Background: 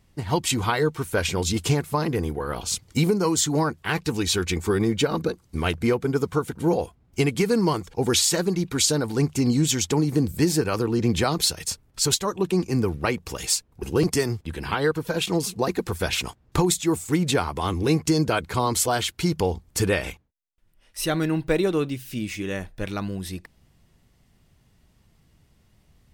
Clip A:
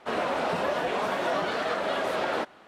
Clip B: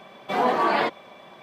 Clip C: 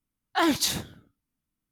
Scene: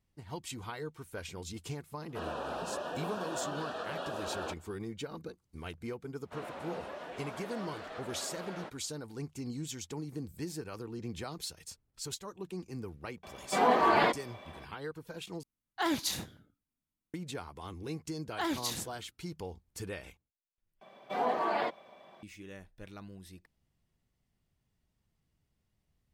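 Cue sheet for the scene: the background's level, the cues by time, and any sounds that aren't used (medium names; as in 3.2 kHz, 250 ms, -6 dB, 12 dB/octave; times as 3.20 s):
background -18.5 dB
2.09 s: add A -10.5 dB + Butterworth band-stop 2.1 kHz, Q 2.9
6.25 s: add A -16 dB
13.23 s: add B -3.5 dB
15.43 s: replace with C -8 dB
18.02 s: add C -10.5 dB
20.81 s: replace with B -12 dB + peaking EQ 650 Hz +5.5 dB 0.74 oct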